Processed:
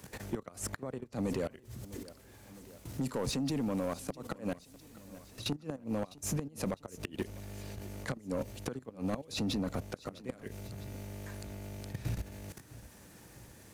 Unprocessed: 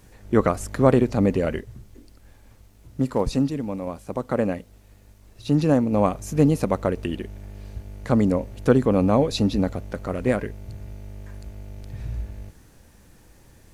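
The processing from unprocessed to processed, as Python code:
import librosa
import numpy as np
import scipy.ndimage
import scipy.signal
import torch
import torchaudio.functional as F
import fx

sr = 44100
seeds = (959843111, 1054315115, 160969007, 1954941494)

y = scipy.signal.sosfilt(scipy.signal.butter(2, 81.0, 'highpass', fs=sr, output='sos'), x)
y = fx.high_shelf(y, sr, hz=3100.0, db=7.5)
y = fx.level_steps(y, sr, step_db=17)
y = fx.gate_flip(y, sr, shuts_db=-21.0, range_db=-27)
y = 10.0 ** (-30.0 / 20.0) * np.tanh(y / 10.0 ** (-30.0 / 20.0))
y = fx.echo_feedback(y, sr, ms=654, feedback_pct=44, wet_db=-22.5)
y = fx.band_squash(y, sr, depth_pct=40)
y = y * librosa.db_to_amplitude(4.5)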